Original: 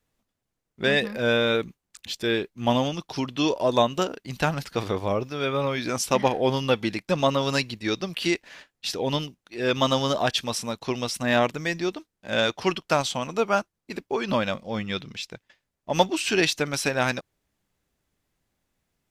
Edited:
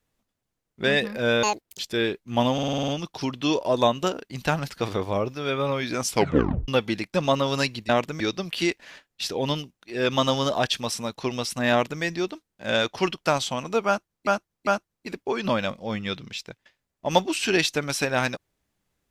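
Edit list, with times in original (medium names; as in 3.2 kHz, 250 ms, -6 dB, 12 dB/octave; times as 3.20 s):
1.43–2.09 s: speed 183%
2.83 s: stutter 0.05 s, 8 plays
6.05 s: tape stop 0.58 s
11.35–11.66 s: copy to 7.84 s
13.51–13.91 s: loop, 3 plays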